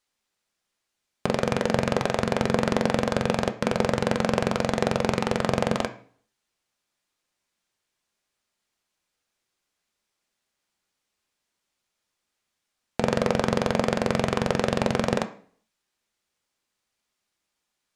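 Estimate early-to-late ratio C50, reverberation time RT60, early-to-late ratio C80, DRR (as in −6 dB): 14.5 dB, 0.50 s, 18.5 dB, 7.0 dB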